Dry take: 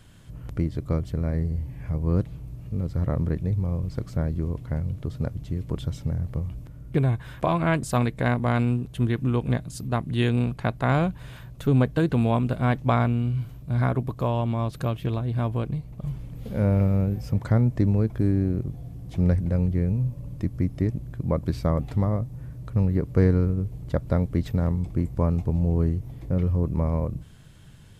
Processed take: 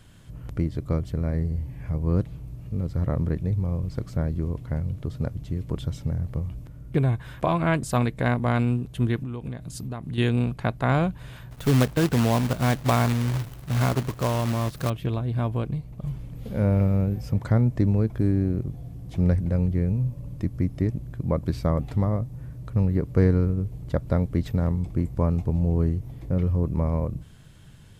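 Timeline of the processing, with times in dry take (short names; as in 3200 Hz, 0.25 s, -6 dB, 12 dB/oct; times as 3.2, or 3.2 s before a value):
9.16–10.18 compressor 10:1, threshold -28 dBFS
11.51–14.9 companded quantiser 4-bit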